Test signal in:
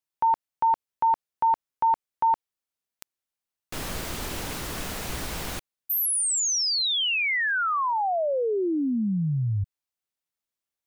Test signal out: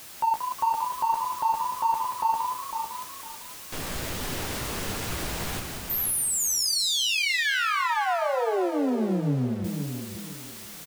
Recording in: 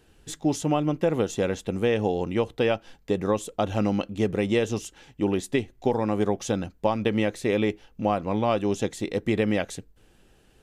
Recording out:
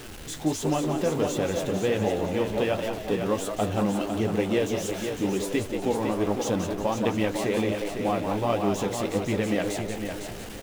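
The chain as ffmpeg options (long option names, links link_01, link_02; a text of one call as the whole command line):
ffmpeg -i in.wav -filter_complex "[0:a]aeval=exprs='val(0)+0.5*0.0251*sgn(val(0))':channel_layout=same,asplit=2[link_01][link_02];[link_02]asplit=4[link_03][link_04][link_05][link_06];[link_03]adelay=181,afreqshift=92,volume=-7dB[link_07];[link_04]adelay=362,afreqshift=184,volume=-15.6dB[link_08];[link_05]adelay=543,afreqshift=276,volume=-24.3dB[link_09];[link_06]adelay=724,afreqshift=368,volume=-32.9dB[link_10];[link_07][link_08][link_09][link_10]amix=inputs=4:normalize=0[link_11];[link_01][link_11]amix=inputs=2:normalize=0,flanger=delay=6.8:depth=9.5:regen=-31:speed=1.4:shape=triangular,asplit=2[link_12][link_13];[link_13]aecho=0:1:504|1008|1512:0.447|0.107|0.0257[link_14];[link_12][link_14]amix=inputs=2:normalize=0" out.wav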